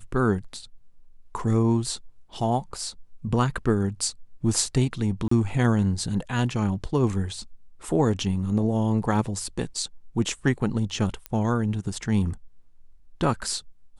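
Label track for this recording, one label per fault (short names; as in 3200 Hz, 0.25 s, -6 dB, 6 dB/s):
5.280000	5.310000	gap 34 ms
11.260000	11.260000	pop -16 dBFS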